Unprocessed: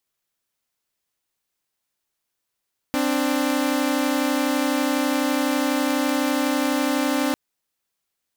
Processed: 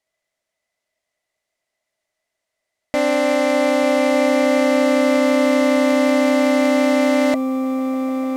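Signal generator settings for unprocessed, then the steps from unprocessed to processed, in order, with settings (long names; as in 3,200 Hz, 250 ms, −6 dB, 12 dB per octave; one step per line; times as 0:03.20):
held notes C4/D4 saw, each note −20 dBFS 4.40 s
low-pass filter 9,100 Hz 12 dB per octave
hollow resonant body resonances 630/2,000 Hz, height 18 dB, ringing for 40 ms
on a send: echo that builds up and dies away 149 ms, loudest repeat 8, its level −18 dB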